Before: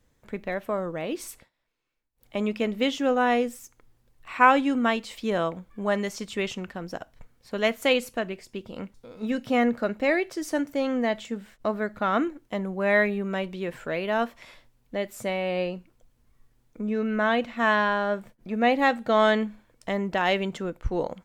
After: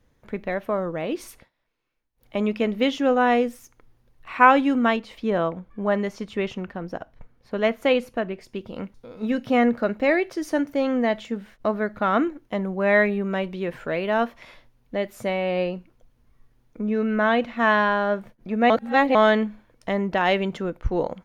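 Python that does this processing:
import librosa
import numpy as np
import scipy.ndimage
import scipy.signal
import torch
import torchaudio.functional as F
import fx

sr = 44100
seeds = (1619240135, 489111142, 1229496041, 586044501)

y = fx.high_shelf(x, sr, hz=2800.0, db=-8.0, at=(4.96, 8.41))
y = fx.edit(y, sr, fx.reverse_span(start_s=18.7, length_s=0.45), tone=tone)
y = fx.high_shelf(y, sr, hz=4000.0, db=-7.0)
y = fx.notch(y, sr, hz=7700.0, q=6.0)
y = F.gain(torch.from_numpy(y), 3.5).numpy()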